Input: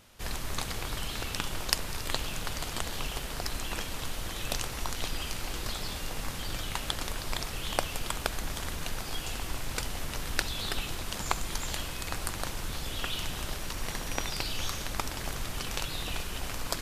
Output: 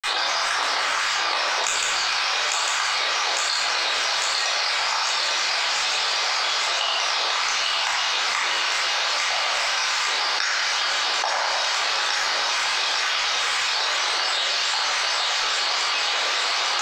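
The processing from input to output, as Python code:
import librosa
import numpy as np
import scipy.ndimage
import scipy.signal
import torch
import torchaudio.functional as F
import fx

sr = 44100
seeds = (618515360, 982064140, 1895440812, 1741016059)

p1 = scipy.signal.sosfilt(scipy.signal.butter(4, 740.0, 'highpass', fs=sr, output='sos'), x)
p2 = fx.peak_eq(p1, sr, hz=5600.0, db=13.5, octaves=0.3)
p3 = fx.notch(p2, sr, hz=3100.0, q=7.0)
p4 = fx.granulator(p3, sr, seeds[0], grain_ms=100.0, per_s=20.0, spray_ms=100.0, spread_st=7)
p5 = fx.air_absorb(p4, sr, metres=170.0)
p6 = p5 + fx.echo_wet_highpass(p5, sr, ms=851, feedback_pct=69, hz=1800.0, wet_db=-3.5, dry=0)
p7 = fx.room_shoebox(p6, sr, seeds[1], volume_m3=520.0, walls='mixed', distance_m=3.9)
p8 = fx.env_flatten(p7, sr, amount_pct=100)
y = p8 * librosa.db_to_amplitude(-2.0)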